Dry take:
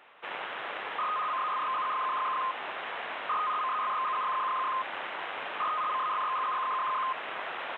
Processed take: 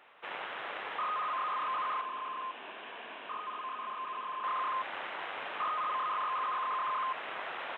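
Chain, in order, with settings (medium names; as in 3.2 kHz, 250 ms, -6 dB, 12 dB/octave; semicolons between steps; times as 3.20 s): 2.01–4.44 s: cabinet simulation 200–3300 Hz, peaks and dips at 230 Hz +4 dB, 540 Hz -6 dB, 810 Hz -7 dB, 1.3 kHz -10 dB, 2 kHz -9 dB; trim -3 dB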